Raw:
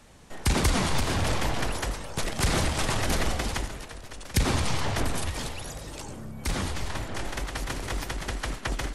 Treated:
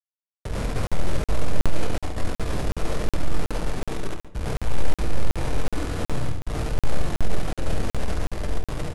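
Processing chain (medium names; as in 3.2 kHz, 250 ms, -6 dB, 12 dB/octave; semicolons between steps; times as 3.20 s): gate -34 dBFS, range -9 dB; steep low-pass 1.3 kHz 48 dB/octave; dynamic bell 600 Hz, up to -3 dB, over -44 dBFS, Q 0.73; reverse; compression 10:1, threshold -39 dBFS, peak gain reduction 20 dB; reverse; peak limiter -38.5 dBFS, peak gain reduction 7 dB; level rider gain up to 10.5 dB; companded quantiser 2-bit; pitch shift -10.5 st; feedback delay 71 ms, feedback 23%, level -7 dB; simulated room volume 80 m³, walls mixed, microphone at 0.38 m; crackling interface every 0.37 s, samples 2048, zero, from 0.87 s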